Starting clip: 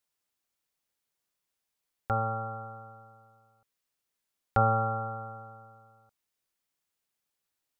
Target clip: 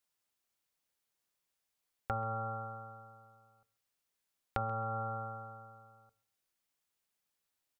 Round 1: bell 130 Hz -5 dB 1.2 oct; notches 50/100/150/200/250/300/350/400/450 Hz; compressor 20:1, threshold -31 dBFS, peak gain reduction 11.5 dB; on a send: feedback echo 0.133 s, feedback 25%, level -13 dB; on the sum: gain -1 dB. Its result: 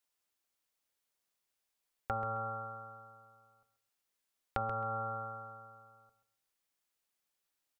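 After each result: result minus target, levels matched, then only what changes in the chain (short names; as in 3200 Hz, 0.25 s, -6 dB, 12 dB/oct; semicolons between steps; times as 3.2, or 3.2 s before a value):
echo-to-direct +9 dB; 125 Hz band -4.0 dB
change: feedback echo 0.133 s, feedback 25%, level -22 dB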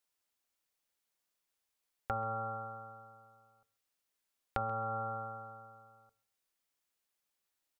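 125 Hz band -3.5 dB
remove: bell 130 Hz -5 dB 1.2 oct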